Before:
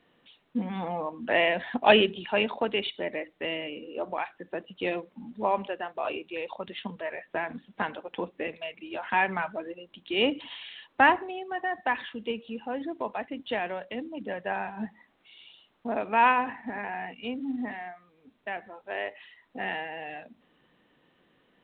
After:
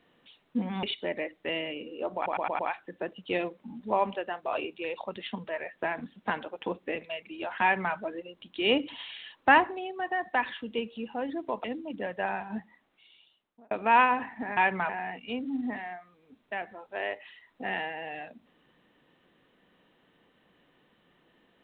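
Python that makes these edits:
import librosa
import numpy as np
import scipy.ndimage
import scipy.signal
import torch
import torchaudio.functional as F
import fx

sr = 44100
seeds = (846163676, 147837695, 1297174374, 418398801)

y = fx.edit(x, sr, fx.cut(start_s=0.83, length_s=1.96),
    fx.stutter(start_s=4.11, slice_s=0.11, count=5),
    fx.duplicate(start_s=9.14, length_s=0.32, to_s=16.84),
    fx.cut(start_s=13.16, length_s=0.75),
    fx.fade_out_span(start_s=14.63, length_s=1.35), tone=tone)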